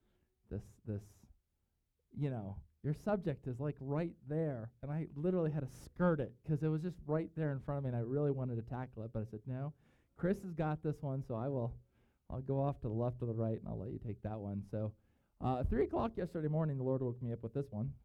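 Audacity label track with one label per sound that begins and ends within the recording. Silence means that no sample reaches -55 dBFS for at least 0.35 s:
0.510000	1.310000	sound
2.140000	9.710000	sound
10.190000	11.790000	sound
12.300000	14.920000	sound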